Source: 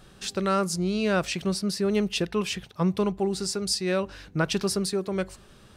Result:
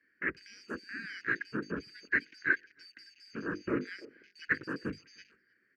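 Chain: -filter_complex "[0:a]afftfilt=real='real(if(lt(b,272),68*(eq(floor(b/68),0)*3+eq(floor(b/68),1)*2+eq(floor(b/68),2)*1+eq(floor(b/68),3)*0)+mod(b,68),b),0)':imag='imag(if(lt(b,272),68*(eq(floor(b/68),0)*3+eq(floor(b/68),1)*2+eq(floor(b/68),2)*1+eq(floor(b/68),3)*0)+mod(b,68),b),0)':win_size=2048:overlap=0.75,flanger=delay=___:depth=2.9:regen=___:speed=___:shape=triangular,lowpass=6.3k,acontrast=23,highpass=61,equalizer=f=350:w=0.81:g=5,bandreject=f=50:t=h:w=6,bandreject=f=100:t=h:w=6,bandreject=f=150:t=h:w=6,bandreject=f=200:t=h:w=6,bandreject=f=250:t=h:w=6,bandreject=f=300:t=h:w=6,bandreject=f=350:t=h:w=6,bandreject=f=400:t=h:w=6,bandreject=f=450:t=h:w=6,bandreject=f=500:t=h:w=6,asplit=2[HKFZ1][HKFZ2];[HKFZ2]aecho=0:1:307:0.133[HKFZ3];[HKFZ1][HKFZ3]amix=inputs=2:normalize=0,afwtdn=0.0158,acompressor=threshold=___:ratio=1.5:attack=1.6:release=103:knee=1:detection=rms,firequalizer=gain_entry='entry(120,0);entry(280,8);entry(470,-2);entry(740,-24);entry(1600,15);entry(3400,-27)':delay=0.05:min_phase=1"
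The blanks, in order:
3.4, -69, 0.99, -33dB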